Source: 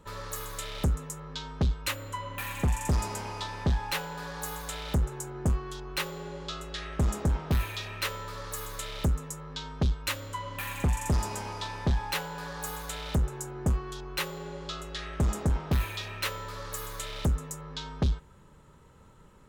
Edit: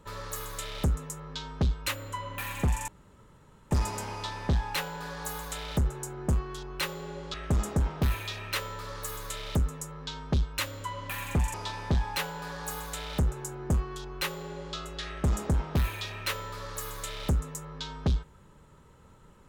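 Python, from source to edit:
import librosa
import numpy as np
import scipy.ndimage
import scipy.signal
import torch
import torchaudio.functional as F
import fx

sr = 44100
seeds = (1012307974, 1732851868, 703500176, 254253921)

y = fx.edit(x, sr, fx.insert_room_tone(at_s=2.88, length_s=0.83),
    fx.cut(start_s=6.51, length_s=0.32),
    fx.cut(start_s=11.03, length_s=0.47), tone=tone)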